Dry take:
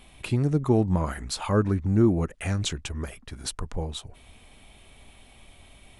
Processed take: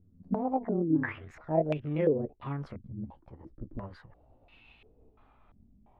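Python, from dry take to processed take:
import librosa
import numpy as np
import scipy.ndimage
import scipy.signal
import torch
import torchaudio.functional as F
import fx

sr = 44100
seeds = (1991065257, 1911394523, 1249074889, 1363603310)

y = fx.pitch_glide(x, sr, semitones=10.5, runs='ending unshifted')
y = fx.filter_held_lowpass(y, sr, hz=2.9, low_hz=220.0, high_hz=2600.0)
y = y * librosa.db_to_amplitude(-9.0)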